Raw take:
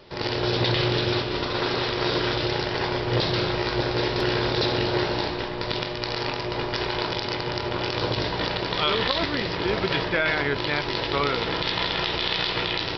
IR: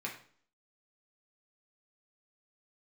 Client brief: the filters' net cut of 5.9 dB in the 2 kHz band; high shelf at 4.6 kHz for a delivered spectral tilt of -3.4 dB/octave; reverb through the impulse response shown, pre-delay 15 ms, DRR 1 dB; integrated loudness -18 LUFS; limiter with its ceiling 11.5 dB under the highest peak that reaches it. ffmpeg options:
-filter_complex "[0:a]equalizer=f=2000:t=o:g=-8.5,highshelf=f=4600:g=4.5,alimiter=limit=0.106:level=0:latency=1,asplit=2[s0][s1];[1:a]atrim=start_sample=2205,adelay=15[s2];[s1][s2]afir=irnorm=-1:irlink=0,volume=0.708[s3];[s0][s3]amix=inputs=2:normalize=0,volume=3.16"

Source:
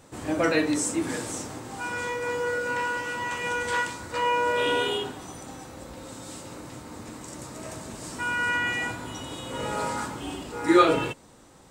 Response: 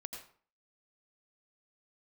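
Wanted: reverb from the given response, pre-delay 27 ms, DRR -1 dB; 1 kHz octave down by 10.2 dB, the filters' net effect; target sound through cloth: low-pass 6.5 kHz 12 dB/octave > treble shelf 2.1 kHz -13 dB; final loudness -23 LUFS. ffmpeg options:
-filter_complex "[0:a]equalizer=f=1000:t=o:g=-9,asplit=2[s0][s1];[1:a]atrim=start_sample=2205,adelay=27[s2];[s1][s2]afir=irnorm=-1:irlink=0,volume=1.5[s3];[s0][s3]amix=inputs=2:normalize=0,lowpass=6500,highshelf=f=2100:g=-13,volume=1.41"

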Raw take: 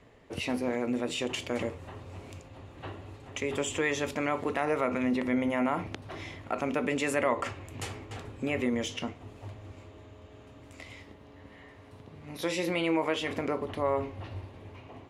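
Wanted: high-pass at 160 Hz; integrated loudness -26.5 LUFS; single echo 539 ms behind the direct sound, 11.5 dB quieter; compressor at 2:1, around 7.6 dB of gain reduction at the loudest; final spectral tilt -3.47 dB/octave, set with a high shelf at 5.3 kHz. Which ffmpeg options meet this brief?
-af "highpass=160,highshelf=f=5300:g=-7.5,acompressor=threshold=0.0126:ratio=2,aecho=1:1:539:0.266,volume=4.22"

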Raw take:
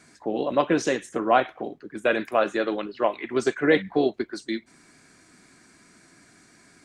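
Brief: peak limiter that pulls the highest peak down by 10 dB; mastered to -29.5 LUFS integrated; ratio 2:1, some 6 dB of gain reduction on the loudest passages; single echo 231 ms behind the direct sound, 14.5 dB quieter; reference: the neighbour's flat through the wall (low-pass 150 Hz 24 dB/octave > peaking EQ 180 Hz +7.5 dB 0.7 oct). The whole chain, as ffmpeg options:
-af "acompressor=threshold=0.0562:ratio=2,alimiter=limit=0.0794:level=0:latency=1,lowpass=f=150:w=0.5412,lowpass=f=150:w=1.3066,equalizer=f=180:t=o:w=0.7:g=7.5,aecho=1:1:231:0.188,volume=10.6"

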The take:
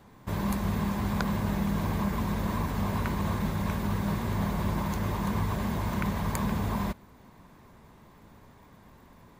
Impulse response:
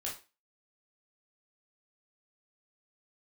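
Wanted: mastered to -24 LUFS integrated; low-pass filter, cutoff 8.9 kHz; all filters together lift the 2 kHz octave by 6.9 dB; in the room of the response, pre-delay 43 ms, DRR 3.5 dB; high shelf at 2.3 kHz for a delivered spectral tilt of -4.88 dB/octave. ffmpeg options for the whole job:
-filter_complex "[0:a]lowpass=8900,equalizer=f=2000:t=o:g=6,highshelf=f=2300:g=5.5,asplit=2[s0][s1];[1:a]atrim=start_sample=2205,adelay=43[s2];[s1][s2]afir=irnorm=-1:irlink=0,volume=0.596[s3];[s0][s3]amix=inputs=2:normalize=0,volume=1.68"

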